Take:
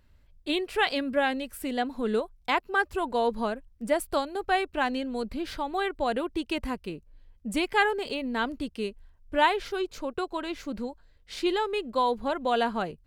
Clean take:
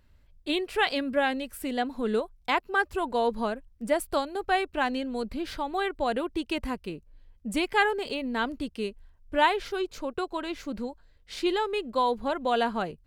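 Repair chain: none needed

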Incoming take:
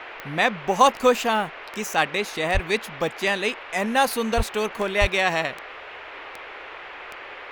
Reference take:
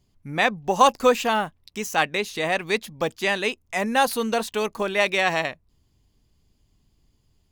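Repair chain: de-click; de-plosive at 2.53/4.36/5; noise print and reduce 26 dB

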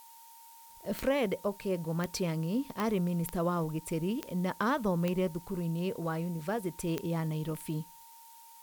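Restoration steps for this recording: de-click; notch 920 Hz, Q 30; noise print and reduce 25 dB

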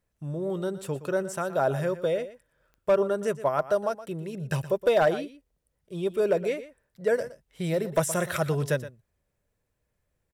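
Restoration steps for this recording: clip repair -15 dBFS; de-click; inverse comb 0.119 s -14.5 dB

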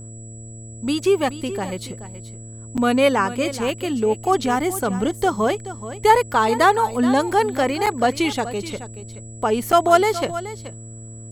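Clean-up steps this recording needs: de-hum 112.6 Hz, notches 6; notch 7800 Hz, Q 30; interpolate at 2.77/7.86/9.72, 7.2 ms; inverse comb 0.427 s -14 dB

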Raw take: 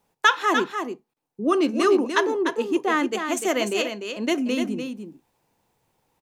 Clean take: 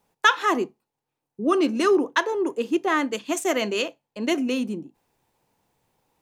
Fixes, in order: interpolate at 1.14, 24 ms; inverse comb 0.297 s -7 dB

